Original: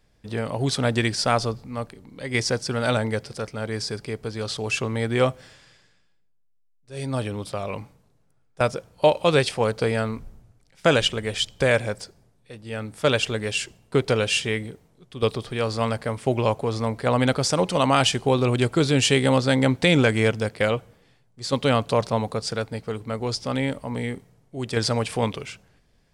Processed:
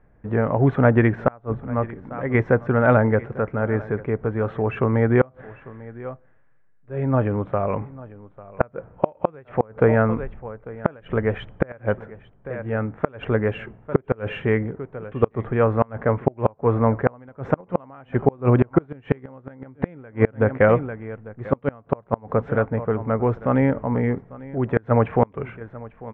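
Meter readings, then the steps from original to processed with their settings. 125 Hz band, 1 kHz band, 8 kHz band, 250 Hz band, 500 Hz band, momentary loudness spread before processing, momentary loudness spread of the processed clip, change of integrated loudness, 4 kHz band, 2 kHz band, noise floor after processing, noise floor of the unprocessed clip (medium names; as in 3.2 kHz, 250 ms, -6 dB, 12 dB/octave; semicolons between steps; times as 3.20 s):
+3.5 dB, +0.5 dB, under -40 dB, +2.5 dB, +2.0 dB, 14 LU, 16 LU, +1.0 dB, under -20 dB, -2.5 dB, -55 dBFS, -62 dBFS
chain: inverse Chebyshev low-pass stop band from 4.4 kHz, stop band 50 dB; delay 846 ms -19.5 dB; inverted gate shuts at -11 dBFS, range -31 dB; trim +7 dB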